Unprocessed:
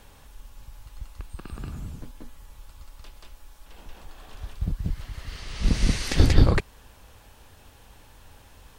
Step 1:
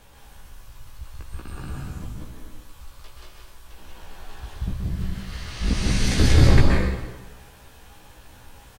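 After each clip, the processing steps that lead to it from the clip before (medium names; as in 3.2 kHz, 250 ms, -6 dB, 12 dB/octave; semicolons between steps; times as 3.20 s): doubling 16 ms -3.5 dB; plate-style reverb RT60 1.2 s, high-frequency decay 0.85×, pre-delay 115 ms, DRR -2.5 dB; trim -1.5 dB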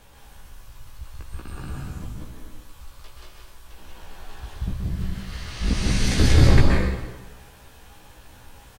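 no audible change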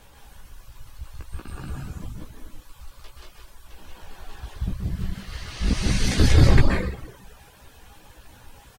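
reverb removal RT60 0.71 s; trim +1 dB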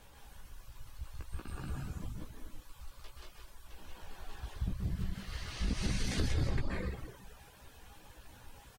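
compression 4:1, threshold -23 dBFS, peak gain reduction 13.5 dB; trim -6.5 dB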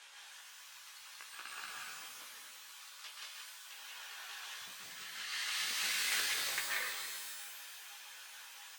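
tracing distortion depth 0.34 ms; Butterworth band-pass 3.8 kHz, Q 0.52; pitch-shifted reverb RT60 1.6 s, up +12 st, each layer -2 dB, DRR 4.5 dB; trim +9 dB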